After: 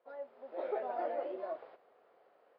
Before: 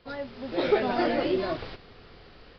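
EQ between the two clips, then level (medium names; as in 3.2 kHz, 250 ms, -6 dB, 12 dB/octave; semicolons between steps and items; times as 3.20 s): ladder band-pass 720 Hz, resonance 45%; -1.0 dB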